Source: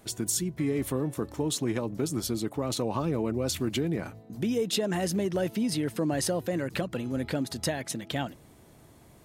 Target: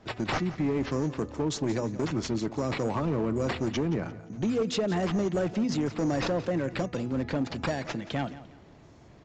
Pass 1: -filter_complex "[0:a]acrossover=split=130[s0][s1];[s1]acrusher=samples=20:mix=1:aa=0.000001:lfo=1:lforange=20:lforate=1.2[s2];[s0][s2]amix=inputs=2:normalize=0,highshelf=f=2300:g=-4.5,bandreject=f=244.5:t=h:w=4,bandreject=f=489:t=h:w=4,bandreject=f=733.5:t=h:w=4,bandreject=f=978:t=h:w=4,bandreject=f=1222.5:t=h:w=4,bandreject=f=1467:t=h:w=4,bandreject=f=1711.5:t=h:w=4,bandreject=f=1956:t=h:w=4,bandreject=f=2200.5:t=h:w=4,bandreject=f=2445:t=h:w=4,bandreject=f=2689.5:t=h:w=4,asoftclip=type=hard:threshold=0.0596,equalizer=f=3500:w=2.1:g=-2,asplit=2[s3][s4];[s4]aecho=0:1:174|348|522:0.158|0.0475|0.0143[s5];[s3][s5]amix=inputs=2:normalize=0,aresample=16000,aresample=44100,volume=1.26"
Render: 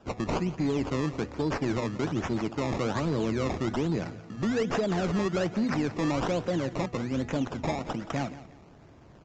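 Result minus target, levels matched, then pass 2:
decimation with a swept rate: distortion +6 dB
-filter_complex "[0:a]acrossover=split=130[s0][s1];[s1]acrusher=samples=5:mix=1:aa=0.000001:lfo=1:lforange=5:lforate=1.2[s2];[s0][s2]amix=inputs=2:normalize=0,highshelf=f=2300:g=-4.5,bandreject=f=244.5:t=h:w=4,bandreject=f=489:t=h:w=4,bandreject=f=733.5:t=h:w=4,bandreject=f=978:t=h:w=4,bandreject=f=1222.5:t=h:w=4,bandreject=f=1467:t=h:w=4,bandreject=f=1711.5:t=h:w=4,bandreject=f=1956:t=h:w=4,bandreject=f=2200.5:t=h:w=4,bandreject=f=2445:t=h:w=4,bandreject=f=2689.5:t=h:w=4,asoftclip=type=hard:threshold=0.0596,equalizer=f=3500:w=2.1:g=-2,asplit=2[s3][s4];[s4]aecho=0:1:174|348|522:0.158|0.0475|0.0143[s5];[s3][s5]amix=inputs=2:normalize=0,aresample=16000,aresample=44100,volume=1.26"

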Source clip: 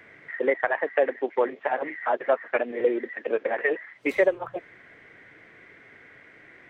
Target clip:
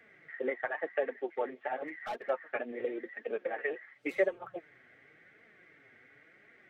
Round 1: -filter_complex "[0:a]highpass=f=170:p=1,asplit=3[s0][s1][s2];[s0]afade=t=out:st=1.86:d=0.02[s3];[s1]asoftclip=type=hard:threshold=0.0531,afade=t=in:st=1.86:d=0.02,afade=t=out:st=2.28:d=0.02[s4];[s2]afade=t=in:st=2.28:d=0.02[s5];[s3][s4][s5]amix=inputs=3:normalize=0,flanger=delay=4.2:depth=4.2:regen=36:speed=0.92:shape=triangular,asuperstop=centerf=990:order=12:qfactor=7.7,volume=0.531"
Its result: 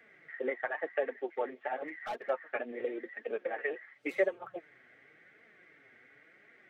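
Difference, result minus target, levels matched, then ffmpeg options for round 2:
125 Hz band -2.5 dB
-filter_complex "[0:a]highpass=f=51:p=1,asplit=3[s0][s1][s2];[s0]afade=t=out:st=1.86:d=0.02[s3];[s1]asoftclip=type=hard:threshold=0.0531,afade=t=in:st=1.86:d=0.02,afade=t=out:st=2.28:d=0.02[s4];[s2]afade=t=in:st=2.28:d=0.02[s5];[s3][s4][s5]amix=inputs=3:normalize=0,flanger=delay=4.2:depth=4.2:regen=36:speed=0.92:shape=triangular,asuperstop=centerf=990:order=12:qfactor=7.7,volume=0.531"

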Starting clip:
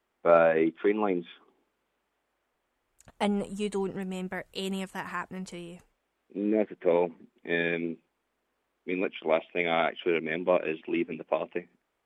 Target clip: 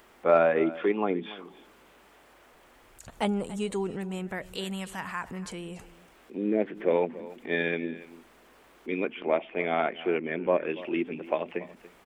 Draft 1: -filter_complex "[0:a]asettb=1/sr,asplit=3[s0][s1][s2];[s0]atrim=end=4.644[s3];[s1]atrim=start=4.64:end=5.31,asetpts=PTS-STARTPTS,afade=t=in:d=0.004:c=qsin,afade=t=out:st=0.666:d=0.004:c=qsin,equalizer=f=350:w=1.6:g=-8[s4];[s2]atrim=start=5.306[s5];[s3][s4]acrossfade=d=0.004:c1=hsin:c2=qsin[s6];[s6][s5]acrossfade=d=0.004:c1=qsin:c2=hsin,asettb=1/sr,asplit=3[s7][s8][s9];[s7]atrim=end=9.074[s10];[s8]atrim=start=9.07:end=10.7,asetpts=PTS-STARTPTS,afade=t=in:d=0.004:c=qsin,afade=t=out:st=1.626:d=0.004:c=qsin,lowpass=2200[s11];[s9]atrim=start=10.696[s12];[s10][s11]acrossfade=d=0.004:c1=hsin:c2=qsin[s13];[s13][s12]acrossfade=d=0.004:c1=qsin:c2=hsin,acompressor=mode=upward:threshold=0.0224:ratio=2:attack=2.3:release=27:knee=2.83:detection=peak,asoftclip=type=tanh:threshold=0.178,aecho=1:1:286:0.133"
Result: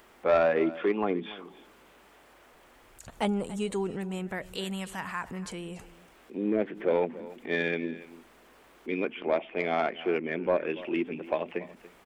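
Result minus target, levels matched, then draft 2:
saturation: distortion +17 dB
-filter_complex "[0:a]asettb=1/sr,asplit=3[s0][s1][s2];[s0]atrim=end=4.644[s3];[s1]atrim=start=4.64:end=5.31,asetpts=PTS-STARTPTS,afade=t=in:d=0.004:c=qsin,afade=t=out:st=0.666:d=0.004:c=qsin,equalizer=f=350:w=1.6:g=-8[s4];[s2]atrim=start=5.306[s5];[s3][s4]acrossfade=d=0.004:c1=hsin:c2=qsin[s6];[s6][s5]acrossfade=d=0.004:c1=qsin:c2=hsin,asettb=1/sr,asplit=3[s7][s8][s9];[s7]atrim=end=9.074[s10];[s8]atrim=start=9.07:end=10.7,asetpts=PTS-STARTPTS,afade=t=in:d=0.004:c=qsin,afade=t=out:st=1.626:d=0.004:c=qsin,lowpass=2200[s11];[s9]atrim=start=10.696[s12];[s10][s11]acrossfade=d=0.004:c1=hsin:c2=qsin[s13];[s13][s12]acrossfade=d=0.004:c1=qsin:c2=hsin,acompressor=mode=upward:threshold=0.0224:ratio=2:attack=2.3:release=27:knee=2.83:detection=peak,asoftclip=type=tanh:threshold=0.596,aecho=1:1:286:0.133"

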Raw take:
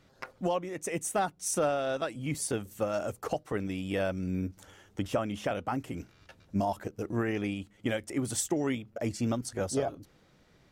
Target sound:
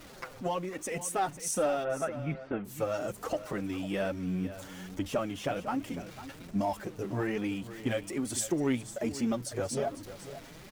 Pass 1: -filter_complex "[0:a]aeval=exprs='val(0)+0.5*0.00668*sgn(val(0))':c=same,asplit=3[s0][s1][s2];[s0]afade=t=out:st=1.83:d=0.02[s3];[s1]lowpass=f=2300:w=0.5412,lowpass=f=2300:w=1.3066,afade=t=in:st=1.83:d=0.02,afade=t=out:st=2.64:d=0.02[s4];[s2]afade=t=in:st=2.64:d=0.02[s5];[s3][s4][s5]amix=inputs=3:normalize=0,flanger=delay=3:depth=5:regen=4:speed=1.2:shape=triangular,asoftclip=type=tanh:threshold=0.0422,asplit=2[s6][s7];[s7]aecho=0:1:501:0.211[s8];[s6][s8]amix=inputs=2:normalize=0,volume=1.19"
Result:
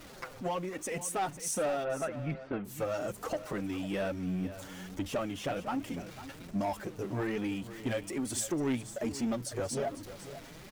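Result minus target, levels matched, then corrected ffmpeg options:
saturation: distortion +14 dB
-filter_complex "[0:a]aeval=exprs='val(0)+0.5*0.00668*sgn(val(0))':c=same,asplit=3[s0][s1][s2];[s0]afade=t=out:st=1.83:d=0.02[s3];[s1]lowpass=f=2300:w=0.5412,lowpass=f=2300:w=1.3066,afade=t=in:st=1.83:d=0.02,afade=t=out:st=2.64:d=0.02[s4];[s2]afade=t=in:st=2.64:d=0.02[s5];[s3][s4][s5]amix=inputs=3:normalize=0,flanger=delay=3:depth=5:regen=4:speed=1.2:shape=triangular,asoftclip=type=tanh:threshold=0.126,asplit=2[s6][s7];[s7]aecho=0:1:501:0.211[s8];[s6][s8]amix=inputs=2:normalize=0,volume=1.19"

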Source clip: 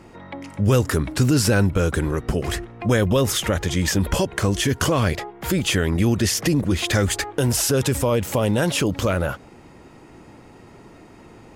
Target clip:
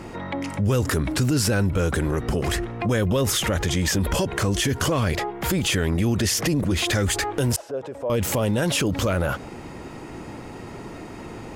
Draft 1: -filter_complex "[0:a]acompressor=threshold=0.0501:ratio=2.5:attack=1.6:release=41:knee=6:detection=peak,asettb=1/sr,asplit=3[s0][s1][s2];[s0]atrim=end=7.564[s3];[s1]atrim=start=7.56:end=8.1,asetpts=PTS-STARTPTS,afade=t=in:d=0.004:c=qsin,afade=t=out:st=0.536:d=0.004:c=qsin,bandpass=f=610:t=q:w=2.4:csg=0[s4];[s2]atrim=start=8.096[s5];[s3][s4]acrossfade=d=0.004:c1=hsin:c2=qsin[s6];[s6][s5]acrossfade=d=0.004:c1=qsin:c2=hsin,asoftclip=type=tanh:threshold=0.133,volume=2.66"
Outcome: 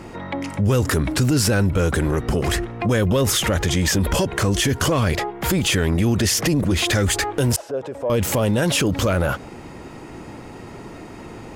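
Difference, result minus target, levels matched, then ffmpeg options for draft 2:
compression: peak gain reduction -3.5 dB
-filter_complex "[0:a]acompressor=threshold=0.0251:ratio=2.5:attack=1.6:release=41:knee=6:detection=peak,asettb=1/sr,asplit=3[s0][s1][s2];[s0]atrim=end=7.564[s3];[s1]atrim=start=7.56:end=8.1,asetpts=PTS-STARTPTS,afade=t=in:d=0.004:c=qsin,afade=t=out:st=0.536:d=0.004:c=qsin,bandpass=f=610:t=q:w=2.4:csg=0[s4];[s2]atrim=start=8.096[s5];[s3][s4]acrossfade=d=0.004:c1=hsin:c2=qsin[s6];[s6][s5]acrossfade=d=0.004:c1=qsin:c2=hsin,asoftclip=type=tanh:threshold=0.133,volume=2.66"

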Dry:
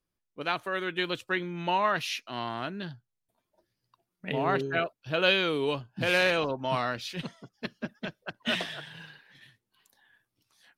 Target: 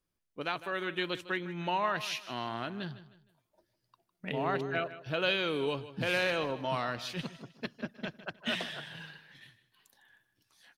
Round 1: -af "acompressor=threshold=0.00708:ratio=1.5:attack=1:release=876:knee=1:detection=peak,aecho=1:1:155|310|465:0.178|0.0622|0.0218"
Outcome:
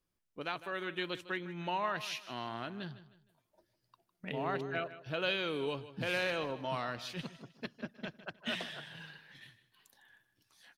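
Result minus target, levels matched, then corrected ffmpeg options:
compression: peak gain reduction +4 dB
-af "acompressor=threshold=0.0266:ratio=1.5:attack=1:release=876:knee=1:detection=peak,aecho=1:1:155|310|465:0.178|0.0622|0.0218"

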